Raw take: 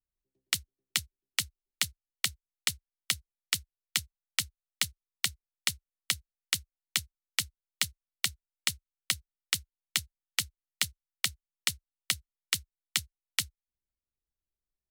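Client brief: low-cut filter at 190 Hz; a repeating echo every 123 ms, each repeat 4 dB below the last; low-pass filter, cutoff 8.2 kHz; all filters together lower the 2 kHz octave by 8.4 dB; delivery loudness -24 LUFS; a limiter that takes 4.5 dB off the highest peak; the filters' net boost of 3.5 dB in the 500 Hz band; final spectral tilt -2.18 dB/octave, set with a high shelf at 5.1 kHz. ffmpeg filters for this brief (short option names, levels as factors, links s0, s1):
-af "highpass=190,lowpass=8200,equalizer=f=500:t=o:g=5,equalizer=f=2000:t=o:g=-9,highshelf=f=5100:g=-7.5,alimiter=limit=0.0891:level=0:latency=1,aecho=1:1:123|246|369|492|615|738|861|984|1107:0.631|0.398|0.25|0.158|0.0994|0.0626|0.0394|0.0249|0.0157,volume=7.94"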